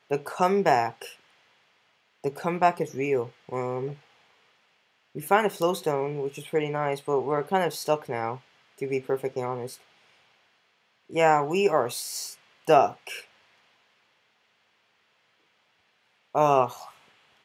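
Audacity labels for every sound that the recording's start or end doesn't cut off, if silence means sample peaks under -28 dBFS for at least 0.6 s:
2.250000	3.900000	sound
5.170000	9.660000	sound
11.160000	13.150000	sound
16.350000	16.680000	sound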